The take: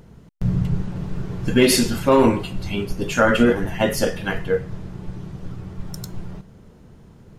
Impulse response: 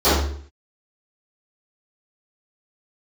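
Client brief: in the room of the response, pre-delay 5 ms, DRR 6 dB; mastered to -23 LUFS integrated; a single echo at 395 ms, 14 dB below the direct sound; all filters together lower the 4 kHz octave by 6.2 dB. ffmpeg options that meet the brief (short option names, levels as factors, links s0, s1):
-filter_complex "[0:a]equalizer=f=4000:t=o:g=-8.5,aecho=1:1:395:0.2,asplit=2[s0][s1];[1:a]atrim=start_sample=2205,adelay=5[s2];[s1][s2]afir=irnorm=-1:irlink=0,volume=0.0299[s3];[s0][s3]amix=inputs=2:normalize=0,volume=0.562"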